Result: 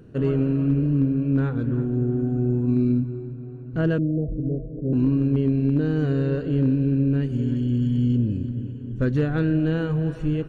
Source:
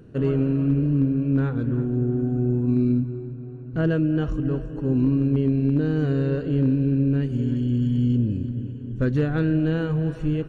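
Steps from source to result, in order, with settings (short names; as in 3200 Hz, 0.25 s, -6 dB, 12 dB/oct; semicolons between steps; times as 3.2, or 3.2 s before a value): 3.98–4.93 rippled Chebyshev low-pass 700 Hz, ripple 3 dB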